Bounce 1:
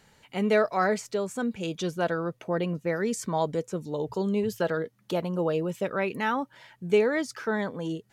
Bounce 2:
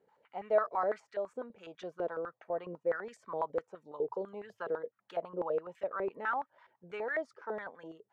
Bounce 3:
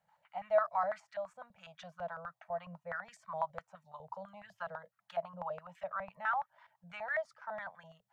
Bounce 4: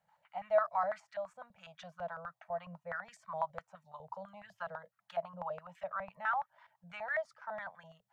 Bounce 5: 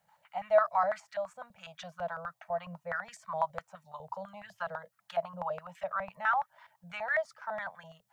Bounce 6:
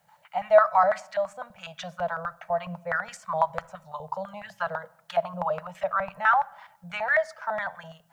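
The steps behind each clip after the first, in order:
band-pass on a step sequencer 12 Hz 440–1,700 Hz
Chebyshev band-stop filter 180–650 Hz, order 3; level +1 dB
no processing that can be heard
high-shelf EQ 4,300 Hz +6.5 dB; level +4.5 dB
rectangular room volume 2,600 cubic metres, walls furnished, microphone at 0.38 metres; level +7.5 dB

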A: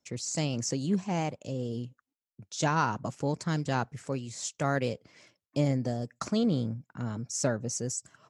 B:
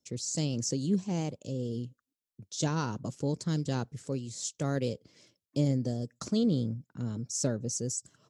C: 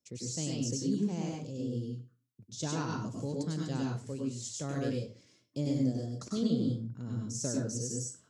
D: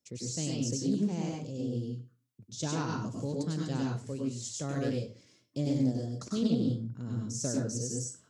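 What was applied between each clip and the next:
flat-topped bell 1,300 Hz −9.5 dB 2.3 octaves
convolution reverb RT60 0.35 s, pre-delay 92 ms, DRR −1.5 dB; level −6.5 dB
highs frequency-modulated by the lows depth 0.17 ms; level +1.5 dB

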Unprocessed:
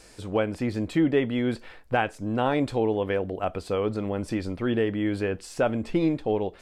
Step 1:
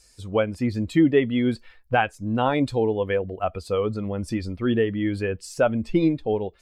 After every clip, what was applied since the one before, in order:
spectral dynamics exaggerated over time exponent 1.5
level +5.5 dB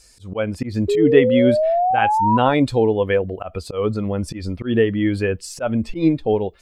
volume swells 139 ms
sound drawn into the spectrogram rise, 0:00.88–0:02.38, 400–1,000 Hz −23 dBFS
level +5.5 dB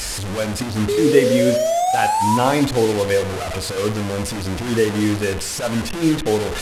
linear delta modulator 64 kbit/s, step −19 dBFS
convolution reverb RT60 0.75 s, pre-delay 38 ms, DRR 10 dB
level −1 dB

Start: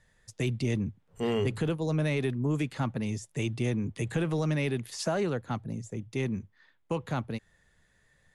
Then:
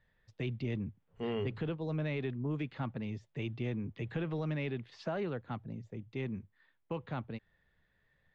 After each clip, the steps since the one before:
low-pass filter 3,800 Hz 24 dB per octave
level −7 dB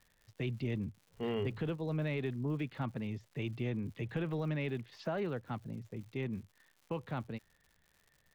surface crackle 170 per second −52 dBFS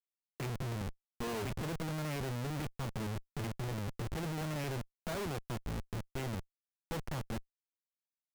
comparator with hysteresis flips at −40.5 dBFS
level +1.5 dB

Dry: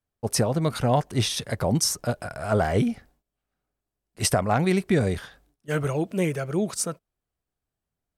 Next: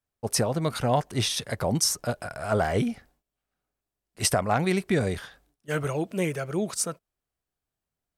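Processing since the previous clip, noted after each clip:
low-shelf EQ 460 Hz −4 dB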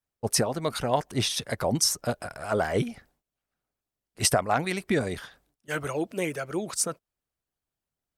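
harmonic and percussive parts rebalanced percussive +9 dB
level −7.5 dB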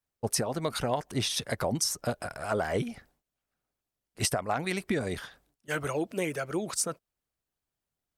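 downward compressor, threshold −25 dBFS, peak gain reduction 7.5 dB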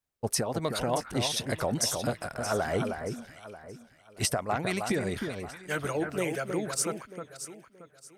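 delay that swaps between a low-pass and a high-pass 313 ms, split 1,900 Hz, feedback 54%, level −5.5 dB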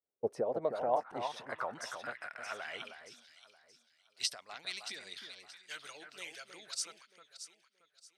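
band-pass filter sweep 450 Hz → 4,100 Hz, 0:00.27–0:03.29
level +1.5 dB

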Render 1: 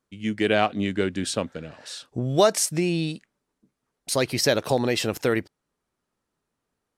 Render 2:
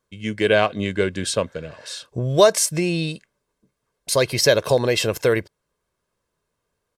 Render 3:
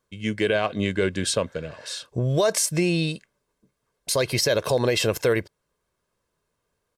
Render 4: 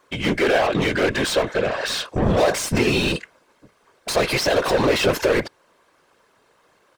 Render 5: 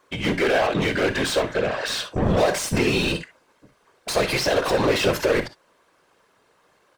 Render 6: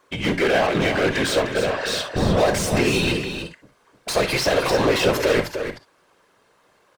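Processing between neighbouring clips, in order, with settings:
comb filter 1.9 ms, depth 51%; level +3 dB
brickwall limiter −12 dBFS, peak gain reduction 10.5 dB
mid-hump overdrive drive 29 dB, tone 2,200 Hz, clips at −11.5 dBFS; random phases in short frames
reverb whose tail is shaped and stops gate 80 ms rising, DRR 10.5 dB; level −2 dB
single-tap delay 304 ms −8 dB; level +1 dB

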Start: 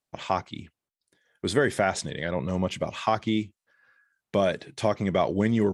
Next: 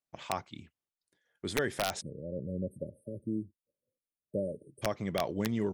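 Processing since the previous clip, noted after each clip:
time-frequency box erased 0:02.01–0:04.82, 620–8,400 Hz
wrap-around overflow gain 11.5 dB
level −8.5 dB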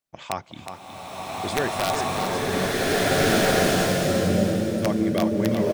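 single-tap delay 366 ms −8 dB
slow-attack reverb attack 1,850 ms, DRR −10 dB
level +5 dB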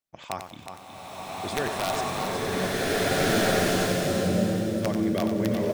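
feedback echo at a low word length 92 ms, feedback 35%, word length 7 bits, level −7.5 dB
level −4 dB

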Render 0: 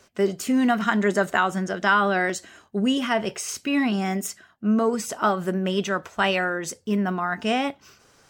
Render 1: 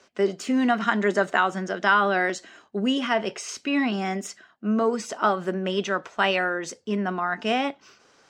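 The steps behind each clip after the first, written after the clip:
three-way crossover with the lows and the highs turned down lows −14 dB, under 190 Hz, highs −21 dB, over 7,200 Hz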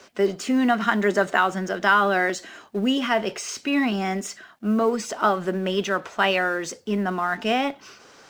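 mu-law and A-law mismatch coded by mu
level +1 dB

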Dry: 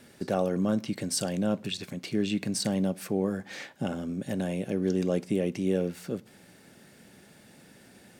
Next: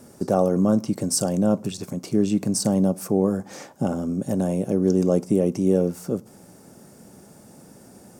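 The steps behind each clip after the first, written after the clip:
flat-topped bell 2,600 Hz −13.5 dB
level +7.5 dB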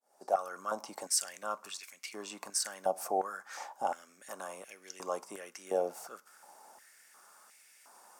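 fade in at the beginning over 0.61 s
high-pass on a step sequencer 2.8 Hz 740–2,200 Hz
level −6.5 dB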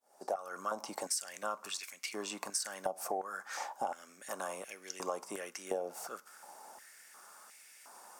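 downward compressor 16 to 1, threshold −35 dBFS, peak gain reduction 14 dB
level +3.5 dB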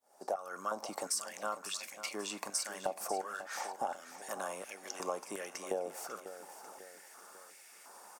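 repeating echo 545 ms, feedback 47%, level −12.5 dB

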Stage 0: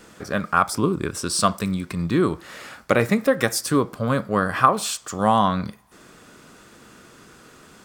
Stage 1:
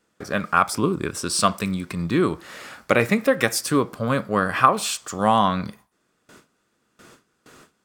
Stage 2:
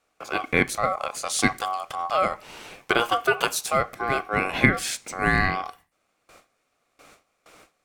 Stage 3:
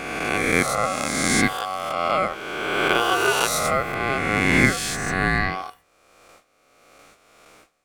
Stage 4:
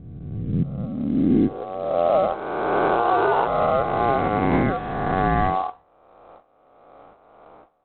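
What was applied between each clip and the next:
dynamic equaliser 2,500 Hz, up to +5 dB, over −39 dBFS, Q 2.1; noise gate with hold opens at −36 dBFS; low-shelf EQ 93 Hz −5 dB
ring modulation 940 Hz
peak hold with a rise ahead of every peak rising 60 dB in 1.94 s; level −2 dB
low-pass filter sweep 120 Hz → 860 Hz, 0:00.30–0:02.41; brickwall limiter −12.5 dBFS, peak gain reduction 7.5 dB; level +2.5 dB; IMA ADPCM 32 kbit/s 8,000 Hz

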